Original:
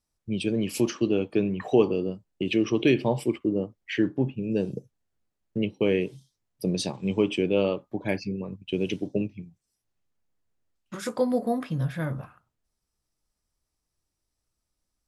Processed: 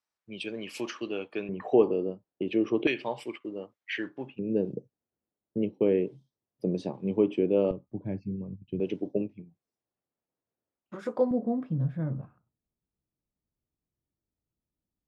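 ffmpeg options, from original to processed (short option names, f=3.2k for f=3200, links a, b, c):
-af "asetnsamples=n=441:p=0,asendcmd='1.49 bandpass f 560;2.87 bandpass f 1800;4.39 bandpass f 380;7.71 bandpass f 110;8.8 bandpass f 500;11.31 bandpass f 190',bandpass=f=1.6k:t=q:w=0.71:csg=0"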